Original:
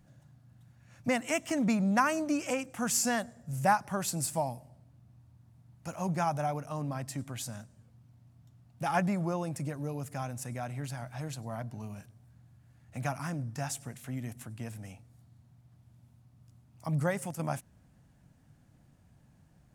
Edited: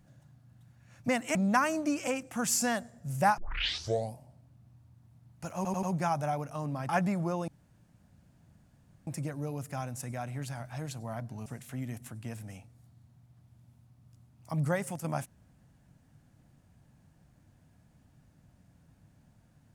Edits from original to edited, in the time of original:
1.35–1.78 s: delete
3.81 s: tape start 0.77 s
5.99 s: stutter 0.09 s, 4 plays
7.05–8.90 s: delete
9.49 s: insert room tone 1.59 s
11.88–13.81 s: delete

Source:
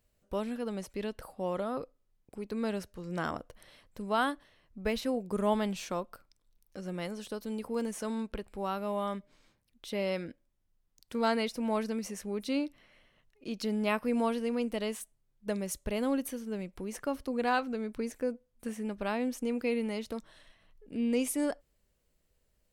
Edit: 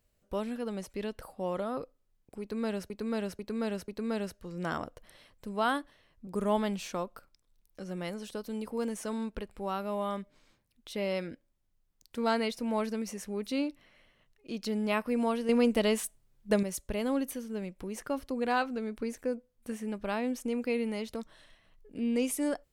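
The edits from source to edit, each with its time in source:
2.41–2.90 s: loop, 4 plays
4.80–5.24 s: delete
14.46–15.60 s: gain +7 dB

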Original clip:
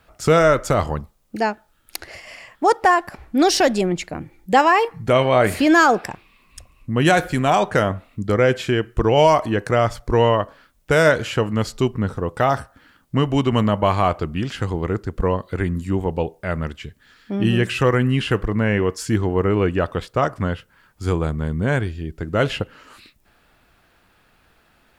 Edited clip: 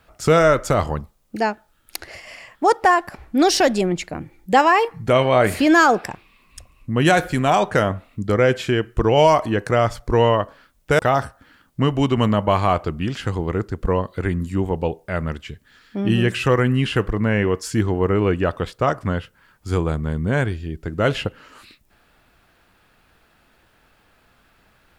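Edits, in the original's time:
10.99–12.34 s: delete

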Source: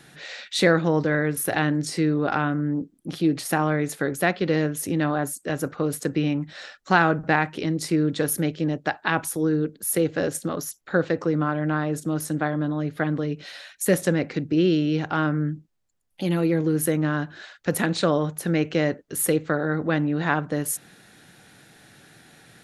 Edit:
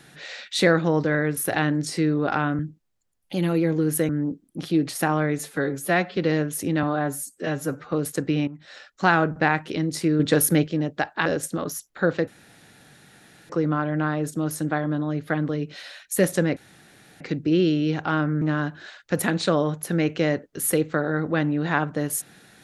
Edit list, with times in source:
3.89–4.41 s: stretch 1.5×
5.07–5.80 s: stretch 1.5×
6.35–7.19 s: fade in equal-power, from -14 dB
8.07–8.54 s: gain +5 dB
9.13–10.17 s: delete
11.19 s: insert room tone 1.22 s
14.26 s: insert room tone 0.64 s
15.47–16.97 s: move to 2.59 s

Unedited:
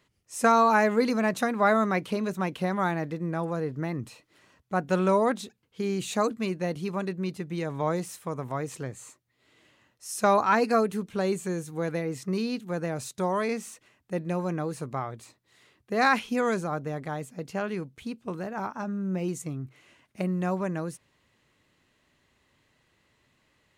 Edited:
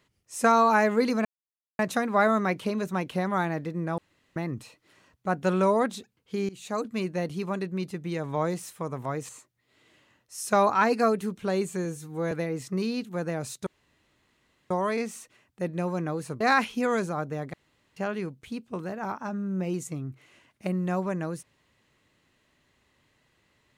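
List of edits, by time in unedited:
1.25 s: insert silence 0.54 s
3.44–3.82 s: room tone
5.95–6.47 s: fade in, from -19 dB
8.75–9.00 s: delete
11.56–11.87 s: stretch 1.5×
13.22 s: insert room tone 1.04 s
14.92–15.95 s: delete
17.08–17.51 s: room tone

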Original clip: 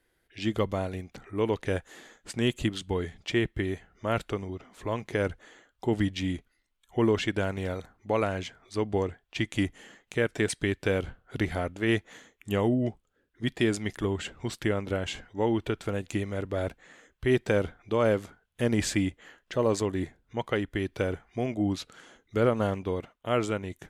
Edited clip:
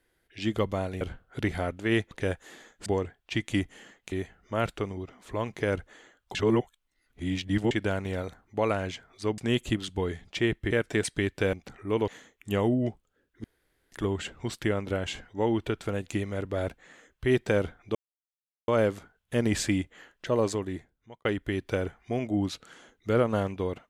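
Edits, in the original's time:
1.01–1.56 s: swap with 10.98–12.08 s
2.31–3.64 s: swap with 8.90–10.16 s
5.87–7.23 s: reverse
13.44–13.92 s: room tone
17.95 s: insert silence 0.73 s
19.65–20.52 s: fade out

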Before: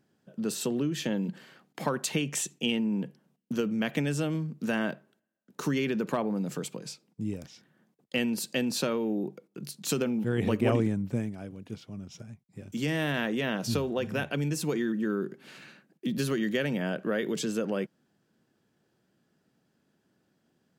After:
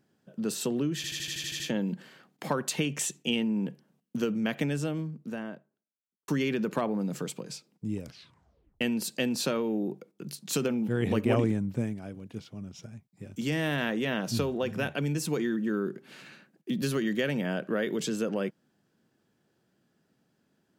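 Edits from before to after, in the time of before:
0.96 s: stutter 0.08 s, 9 plays
3.73–5.64 s: studio fade out
7.39 s: tape stop 0.78 s

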